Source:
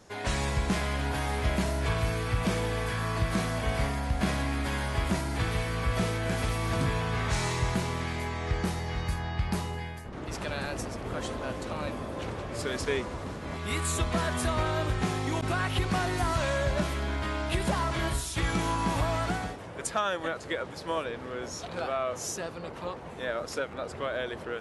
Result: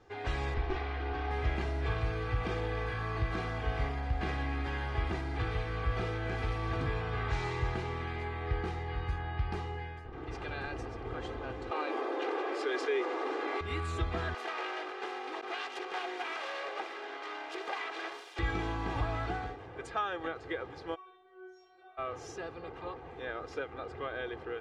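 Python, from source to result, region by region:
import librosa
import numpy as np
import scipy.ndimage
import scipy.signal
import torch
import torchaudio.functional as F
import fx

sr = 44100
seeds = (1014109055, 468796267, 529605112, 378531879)

y = fx.chain(x, sr, fx.lower_of_two(delay_ms=2.7),
    fx.lowpass(hz=4000.0, slope=12), at=(0.54, 1.31))
y = fx.chain(y, sr, fx.steep_highpass(hz=300.0, slope=48),
    fx.env_flatten(amount_pct=70), at=(11.71, 13.61))
y = fx.chain(y, sr, fx.self_delay(depth_ms=0.46),
    fx.highpass(hz=400.0, slope=24), at=(14.34, 18.39))
y = fx.low_shelf(y, sr, hz=200.0, db=-8.5, at=(20.94, 21.97), fade=0.02)
y = fx.stiff_resonator(y, sr, f0_hz=370.0, decay_s=0.64, stiffness=0.002, at=(20.94, 21.97), fade=0.02)
y = fx.dmg_tone(y, sr, hz=730.0, level_db=-62.0, at=(20.94, 21.97), fade=0.02)
y = scipy.signal.sosfilt(scipy.signal.butter(2, 3100.0, 'lowpass', fs=sr, output='sos'), y)
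y = y + 0.69 * np.pad(y, (int(2.5 * sr / 1000.0), 0))[:len(y)]
y = F.gain(torch.from_numpy(y), -6.0).numpy()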